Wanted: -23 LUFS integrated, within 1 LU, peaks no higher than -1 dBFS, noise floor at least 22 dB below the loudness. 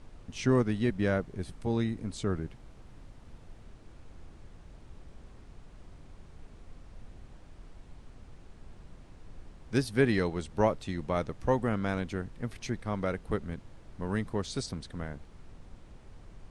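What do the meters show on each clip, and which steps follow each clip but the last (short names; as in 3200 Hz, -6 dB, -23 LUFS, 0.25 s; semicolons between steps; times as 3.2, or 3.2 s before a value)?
noise floor -53 dBFS; noise floor target -54 dBFS; loudness -32.0 LUFS; peak -12.5 dBFS; loudness target -23.0 LUFS
-> noise print and reduce 6 dB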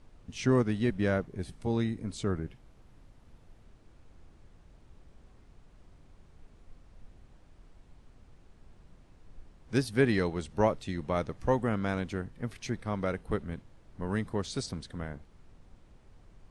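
noise floor -59 dBFS; loudness -32.0 LUFS; peak -12.5 dBFS; loudness target -23.0 LUFS
-> gain +9 dB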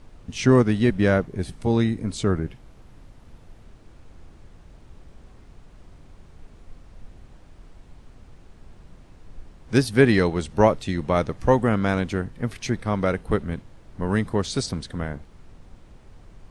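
loudness -23.0 LUFS; peak -3.5 dBFS; noise floor -50 dBFS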